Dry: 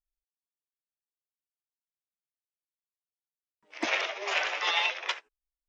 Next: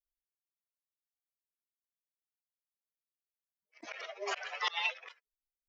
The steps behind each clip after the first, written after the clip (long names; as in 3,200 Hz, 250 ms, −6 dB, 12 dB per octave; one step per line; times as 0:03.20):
spectral dynamics exaggerated over time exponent 2
volume swells 243 ms
level +1.5 dB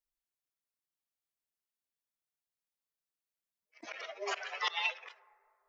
dense smooth reverb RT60 2.6 s, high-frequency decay 0.25×, DRR 19.5 dB